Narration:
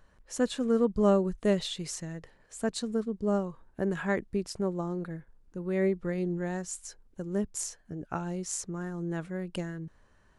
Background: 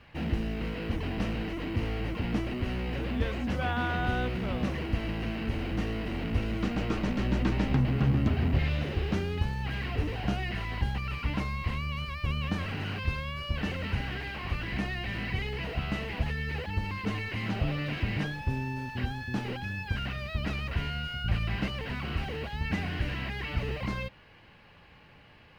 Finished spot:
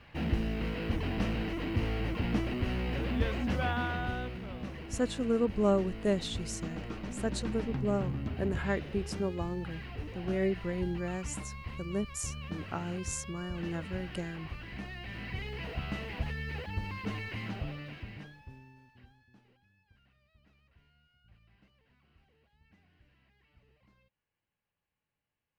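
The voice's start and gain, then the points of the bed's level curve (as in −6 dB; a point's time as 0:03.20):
4.60 s, −3.0 dB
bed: 0:03.61 −0.5 dB
0:04.48 −10 dB
0:14.76 −10 dB
0:15.66 −4.5 dB
0:17.34 −4.5 dB
0:19.69 −34.5 dB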